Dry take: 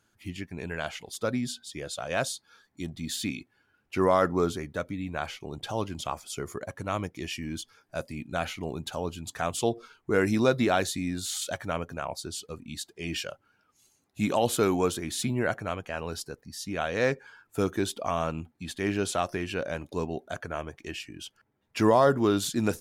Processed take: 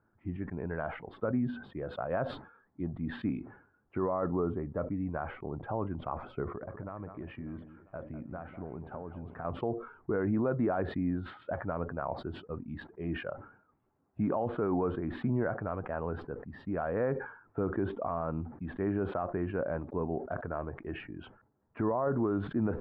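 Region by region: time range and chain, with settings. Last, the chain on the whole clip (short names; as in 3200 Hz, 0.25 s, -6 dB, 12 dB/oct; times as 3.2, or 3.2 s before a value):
4.08–4.91 air absorption 300 m + notch 1500 Hz, Q 8
6.43–9.45 compressor 8:1, threshold -36 dBFS + echo with dull and thin repeats by turns 0.198 s, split 2200 Hz, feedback 69%, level -12 dB
whole clip: inverse Chebyshev low-pass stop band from 5900 Hz, stop band 70 dB; limiter -22 dBFS; sustainer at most 100 dB/s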